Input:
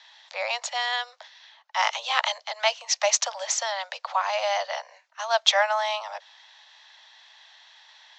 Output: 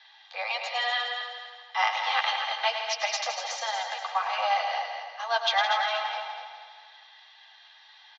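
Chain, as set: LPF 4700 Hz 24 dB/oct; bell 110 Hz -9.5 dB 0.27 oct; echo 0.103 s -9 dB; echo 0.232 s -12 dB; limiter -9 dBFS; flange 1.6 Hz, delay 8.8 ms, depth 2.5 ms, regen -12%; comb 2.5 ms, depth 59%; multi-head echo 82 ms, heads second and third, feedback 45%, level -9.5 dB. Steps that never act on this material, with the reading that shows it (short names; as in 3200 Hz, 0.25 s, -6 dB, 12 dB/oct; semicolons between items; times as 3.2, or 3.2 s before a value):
bell 110 Hz: input band starts at 450 Hz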